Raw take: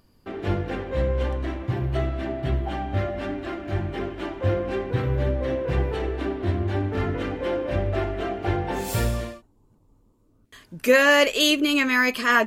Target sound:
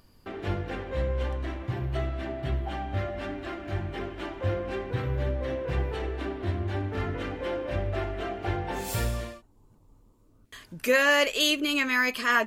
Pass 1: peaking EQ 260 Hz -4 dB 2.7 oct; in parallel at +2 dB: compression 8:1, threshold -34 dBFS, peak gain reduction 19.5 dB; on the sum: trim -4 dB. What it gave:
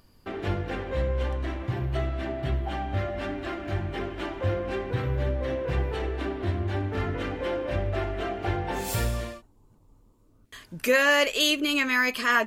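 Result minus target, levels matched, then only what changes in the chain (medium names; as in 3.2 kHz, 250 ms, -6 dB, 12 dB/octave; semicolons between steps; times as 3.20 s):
compression: peak gain reduction -9 dB
change: compression 8:1, threshold -44.5 dBFS, peak gain reduction 28.5 dB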